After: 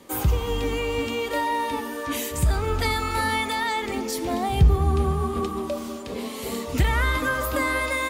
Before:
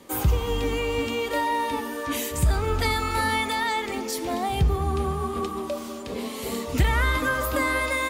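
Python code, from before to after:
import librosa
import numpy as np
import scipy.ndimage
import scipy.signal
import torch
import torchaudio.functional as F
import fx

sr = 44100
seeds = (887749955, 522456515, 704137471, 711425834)

y = fx.low_shelf(x, sr, hz=260.0, db=6.0, at=(3.82, 5.97))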